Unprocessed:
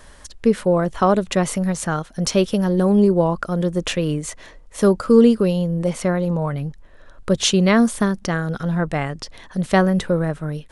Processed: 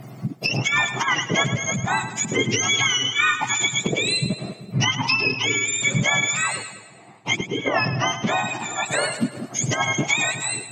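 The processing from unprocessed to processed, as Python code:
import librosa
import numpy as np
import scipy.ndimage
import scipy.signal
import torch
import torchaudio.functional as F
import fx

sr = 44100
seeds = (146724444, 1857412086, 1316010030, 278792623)

y = fx.octave_mirror(x, sr, pivot_hz=1100.0)
y = fx.lowpass(y, sr, hz=3700.0, slope=12, at=(6.56, 8.86))
y = fx.env_lowpass_down(y, sr, base_hz=1800.0, full_db=-15.0)
y = fx.over_compress(y, sr, threshold_db=-23.0, ratio=-0.5)
y = fx.echo_split(y, sr, split_hz=570.0, low_ms=191, high_ms=106, feedback_pct=52, wet_db=-11.0)
y = F.gain(torch.from_numpy(y), 3.5).numpy()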